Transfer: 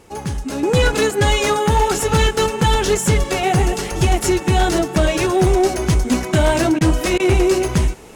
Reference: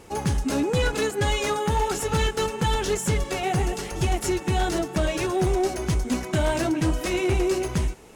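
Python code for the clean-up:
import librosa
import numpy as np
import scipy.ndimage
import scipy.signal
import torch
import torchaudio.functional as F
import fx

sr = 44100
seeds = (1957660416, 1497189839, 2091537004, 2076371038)

y = fx.fix_interpolate(x, sr, at_s=(6.79, 7.18), length_ms=16.0)
y = fx.fix_level(y, sr, at_s=0.63, step_db=-8.0)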